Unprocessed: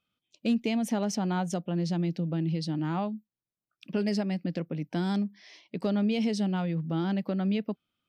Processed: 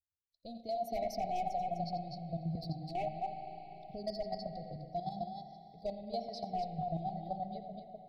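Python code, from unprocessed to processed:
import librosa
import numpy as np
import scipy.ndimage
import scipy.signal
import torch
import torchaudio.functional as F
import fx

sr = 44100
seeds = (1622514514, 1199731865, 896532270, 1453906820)

y = fx.bin_expand(x, sr, power=1.5)
y = fx.curve_eq(y, sr, hz=(130.0, 260.0, 380.0, 710.0, 1700.0, 2600.0, 4400.0, 7700.0, 12000.0), db=(0, -21, -23, 11, 0, -29, 12, -14, 10))
y = fx.echo_multitap(y, sr, ms=(86, 253), db=(-13.0, -5.5))
y = np.clip(y, -10.0 ** (-26.0 / 20.0), 10.0 ** (-26.0 / 20.0))
y = fx.brickwall_bandstop(y, sr, low_hz=790.0, high_hz=1900.0)
y = fx.tilt_eq(y, sr, slope=-3.0)
y = y + 0.53 * np.pad(y, (int(2.7 * sr / 1000.0), 0))[:len(y)]
y = fx.level_steps(y, sr, step_db=11)
y = fx.rev_spring(y, sr, rt60_s=3.1, pass_ms=(35, 48), chirp_ms=20, drr_db=6.5)
y = fx.band_squash(y, sr, depth_pct=40, at=(2.55, 4.76))
y = F.gain(torch.from_numpy(y), -1.5).numpy()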